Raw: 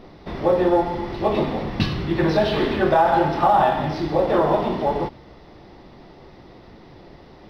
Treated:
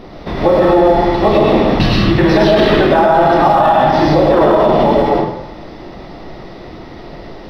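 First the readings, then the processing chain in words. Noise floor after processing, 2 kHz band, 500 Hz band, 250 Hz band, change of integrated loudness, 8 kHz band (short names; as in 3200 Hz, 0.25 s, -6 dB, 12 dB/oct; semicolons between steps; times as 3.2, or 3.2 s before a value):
-33 dBFS, +9.5 dB, +10.0 dB, +10.5 dB, +9.5 dB, n/a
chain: digital reverb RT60 0.81 s, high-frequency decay 0.65×, pre-delay 75 ms, DRR -2 dB; maximiser +10.5 dB; gain -1 dB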